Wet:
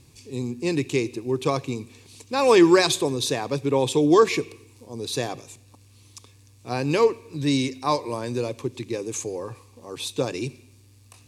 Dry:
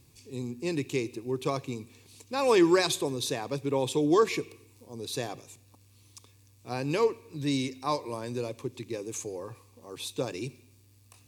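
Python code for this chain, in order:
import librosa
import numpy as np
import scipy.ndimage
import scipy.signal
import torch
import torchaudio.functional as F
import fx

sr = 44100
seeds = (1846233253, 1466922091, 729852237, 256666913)

y = scipy.signal.sosfilt(scipy.signal.butter(2, 11000.0, 'lowpass', fs=sr, output='sos'), x)
y = y * 10.0 ** (6.5 / 20.0)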